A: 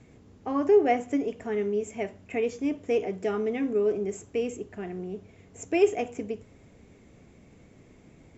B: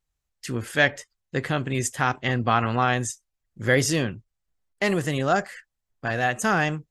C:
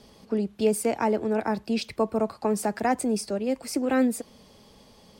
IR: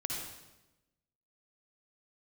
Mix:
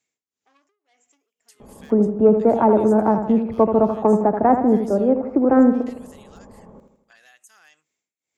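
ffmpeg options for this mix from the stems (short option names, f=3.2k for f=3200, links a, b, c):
-filter_complex "[0:a]acompressor=threshold=-26dB:ratio=6,asoftclip=type=tanh:threshold=-29dB,tremolo=f=1.9:d=0.89,volume=-6dB[a];[1:a]equalizer=f=91:t=o:w=2.1:g=-9.5,asoftclip=type=hard:threshold=-11dB,adelay=1050,volume=-8.5dB[b];[2:a]lowpass=f=1.2k:w=0.5412,lowpass=f=1.2k:w=1.3066,acontrast=74,adelay=1600,volume=2.5dB,asplit=2[c][d];[d]volume=-8dB[e];[a][b]amix=inputs=2:normalize=0,aderivative,acompressor=threshold=-50dB:ratio=4,volume=0dB[f];[e]aecho=0:1:80|160|240|320|400|480|560:1|0.5|0.25|0.125|0.0625|0.0312|0.0156[g];[c][f][g]amix=inputs=3:normalize=0"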